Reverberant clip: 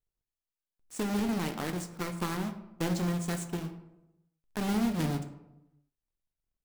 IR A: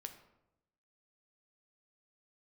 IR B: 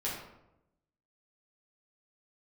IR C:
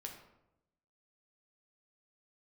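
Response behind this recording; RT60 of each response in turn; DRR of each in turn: A; 0.90, 0.90, 0.90 s; 6.0, -7.5, 1.0 dB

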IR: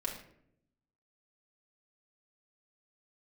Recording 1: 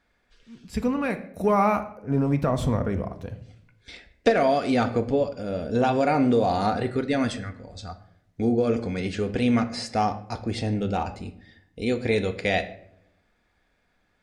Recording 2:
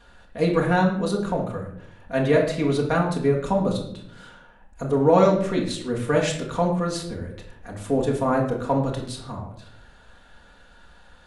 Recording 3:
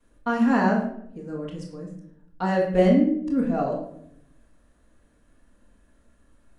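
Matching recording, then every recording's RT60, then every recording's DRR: 2; not exponential, 0.70 s, 0.70 s; 7.5, -2.5, -12.0 dB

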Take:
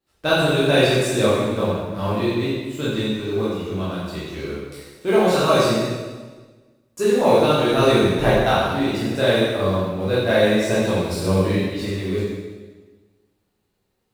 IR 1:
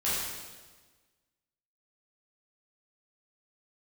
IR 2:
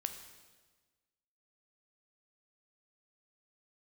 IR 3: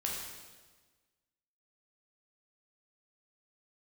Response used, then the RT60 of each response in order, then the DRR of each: 1; 1.4, 1.4, 1.4 s; -10.0, 7.0, -2.5 dB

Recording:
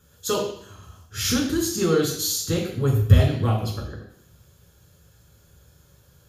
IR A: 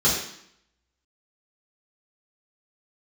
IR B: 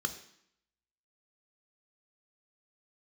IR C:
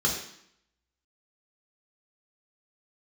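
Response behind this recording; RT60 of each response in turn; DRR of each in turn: C; 0.70, 0.70, 0.70 s; -8.0, 7.5, -2.5 dB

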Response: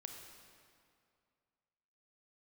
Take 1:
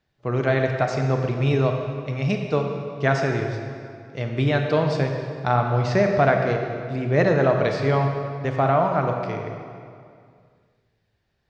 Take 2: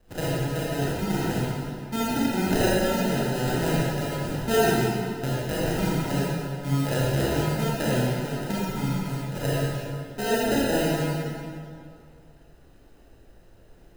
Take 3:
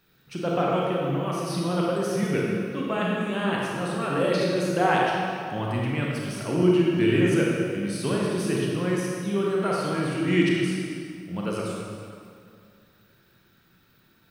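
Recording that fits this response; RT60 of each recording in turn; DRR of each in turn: 1; 2.3, 2.3, 2.3 s; 3.0, -8.5, -4.0 dB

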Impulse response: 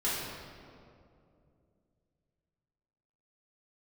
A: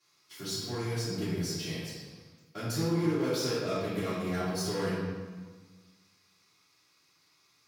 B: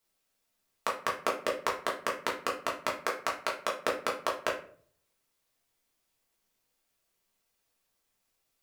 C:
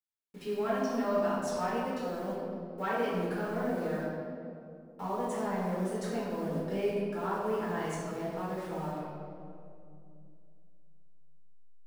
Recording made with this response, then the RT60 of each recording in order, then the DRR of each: C; 1.4, 0.50, 2.6 s; -14.5, -3.5, -9.5 dB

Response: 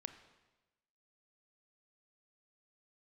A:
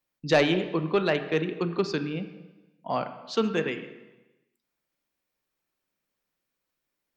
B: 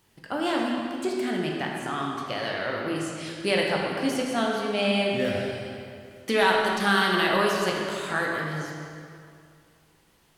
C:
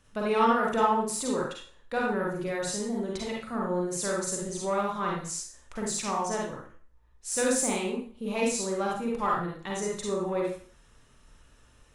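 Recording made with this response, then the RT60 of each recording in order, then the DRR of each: A; 1.1, 2.4, 0.45 s; 9.0, -2.0, -3.0 dB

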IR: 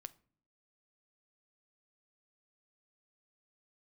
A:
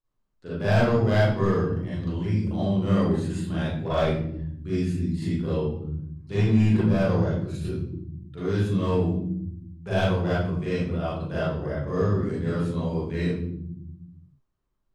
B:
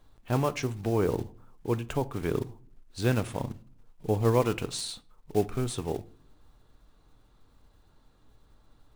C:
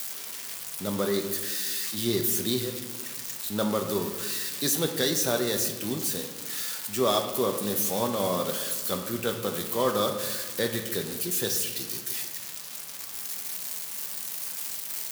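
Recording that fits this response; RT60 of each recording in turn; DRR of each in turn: B; not exponential, not exponential, 1.5 s; -10.5, 13.0, 3.5 dB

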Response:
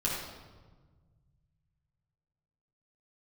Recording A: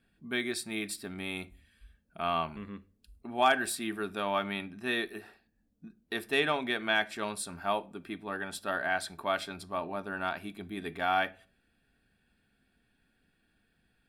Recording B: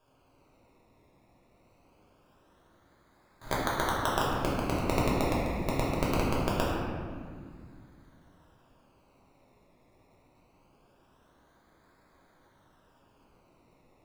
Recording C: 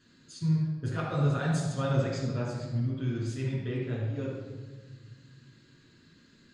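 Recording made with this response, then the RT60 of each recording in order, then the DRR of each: C; not exponential, 2.0 s, 1.4 s; 12.5, -7.0, -7.0 dB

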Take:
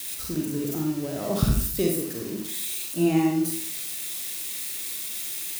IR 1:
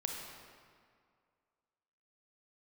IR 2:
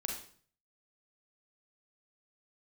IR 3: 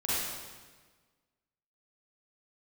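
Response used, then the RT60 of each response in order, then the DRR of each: 2; 2.1, 0.50, 1.4 s; 0.5, 0.5, -10.0 dB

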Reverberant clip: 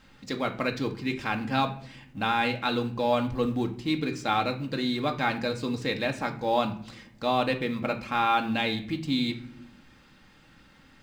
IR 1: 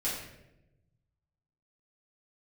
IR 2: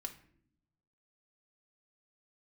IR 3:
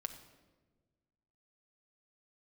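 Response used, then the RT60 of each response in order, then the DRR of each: 2; 0.90 s, not exponential, 1.4 s; -8.5, 3.5, 6.0 dB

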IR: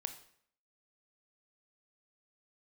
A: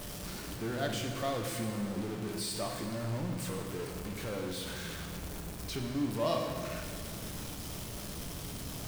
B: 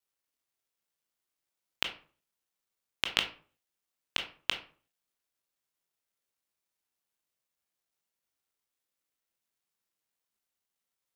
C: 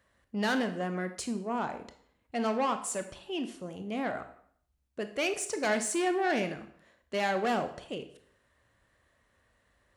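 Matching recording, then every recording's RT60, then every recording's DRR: C; 2.0, 0.40, 0.60 s; 2.0, 4.5, 8.0 dB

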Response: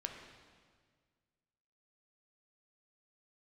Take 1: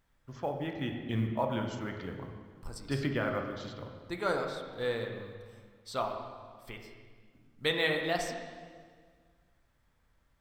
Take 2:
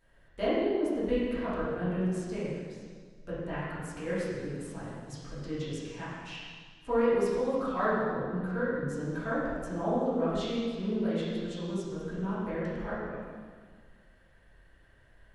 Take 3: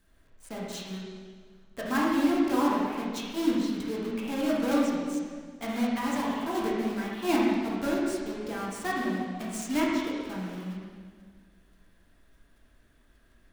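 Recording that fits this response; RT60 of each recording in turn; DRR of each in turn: 1; 1.7, 1.7, 1.7 s; 2.5, -12.5, -5.5 dB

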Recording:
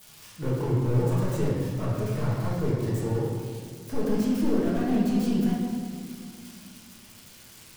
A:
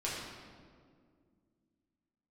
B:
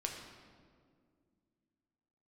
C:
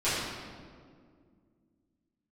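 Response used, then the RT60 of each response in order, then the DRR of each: A; 2.1, 2.1, 2.1 s; -7.0, 1.0, -14.5 dB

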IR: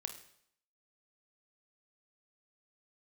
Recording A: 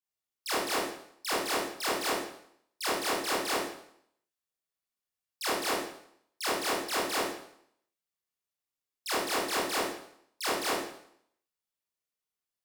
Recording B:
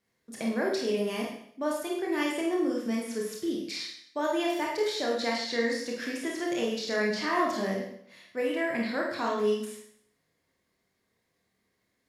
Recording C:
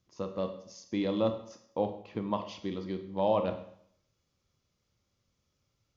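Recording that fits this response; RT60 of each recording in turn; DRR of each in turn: C; 0.65, 0.65, 0.65 s; -8.0, -2.5, 6.5 dB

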